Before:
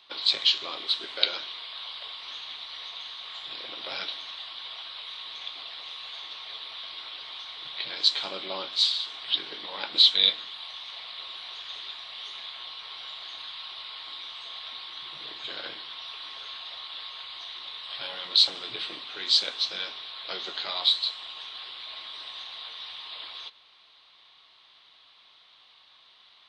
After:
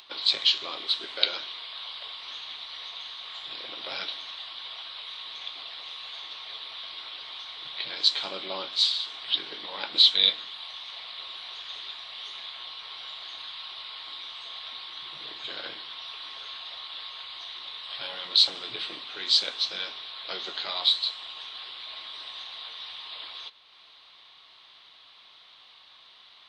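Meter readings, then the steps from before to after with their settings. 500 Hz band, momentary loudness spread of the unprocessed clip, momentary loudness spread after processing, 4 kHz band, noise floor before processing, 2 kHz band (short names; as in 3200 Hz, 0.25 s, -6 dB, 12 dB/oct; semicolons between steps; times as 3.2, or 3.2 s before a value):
0.0 dB, 15 LU, 15 LU, 0.0 dB, -57 dBFS, 0.0 dB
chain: upward compressor, threshold -47 dBFS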